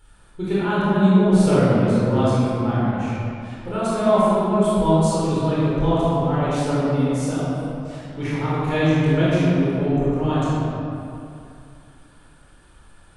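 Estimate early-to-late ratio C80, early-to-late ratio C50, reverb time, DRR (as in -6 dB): -3.0 dB, -5.5 dB, 2.5 s, -10.0 dB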